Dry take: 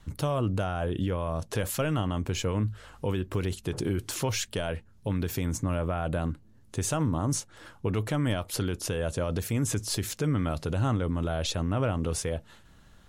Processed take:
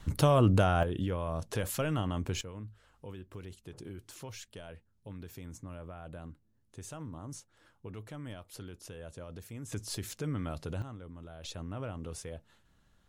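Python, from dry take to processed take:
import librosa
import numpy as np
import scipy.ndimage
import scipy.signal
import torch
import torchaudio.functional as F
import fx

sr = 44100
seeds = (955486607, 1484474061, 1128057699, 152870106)

y = fx.gain(x, sr, db=fx.steps((0.0, 4.0), (0.83, -4.0), (2.41, -16.0), (9.72, -8.0), (10.82, -18.5), (11.44, -12.0)))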